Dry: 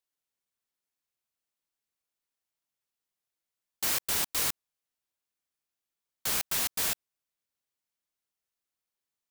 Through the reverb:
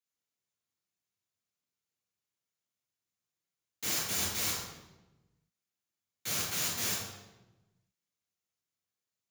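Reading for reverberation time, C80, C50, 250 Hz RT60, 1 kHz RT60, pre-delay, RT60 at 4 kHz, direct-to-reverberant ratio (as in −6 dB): 1.1 s, 4.0 dB, 1.5 dB, 1.4 s, 0.95 s, 3 ms, 0.80 s, −4.5 dB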